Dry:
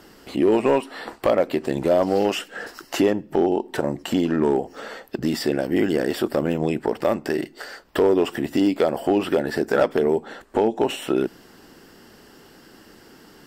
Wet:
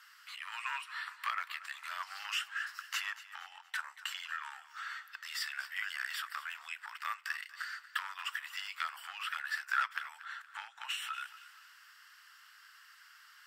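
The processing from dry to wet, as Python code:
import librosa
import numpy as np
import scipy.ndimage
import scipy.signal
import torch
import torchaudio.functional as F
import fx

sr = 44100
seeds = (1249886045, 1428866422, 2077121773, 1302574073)

y = scipy.signal.sosfilt(scipy.signal.butter(8, 1200.0, 'highpass', fs=sr, output='sos'), x)
y = fx.high_shelf(y, sr, hz=2100.0, db=-10.5)
y = fx.echo_feedback(y, sr, ms=235, feedback_pct=41, wet_db=-16)
y = y * 10.0 ** (1.0 / 20.0)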